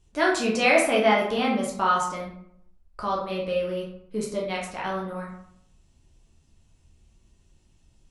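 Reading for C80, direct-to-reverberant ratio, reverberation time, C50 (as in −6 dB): 8.5 dB, −4.0 dB, 0.70 s, 4.0 dB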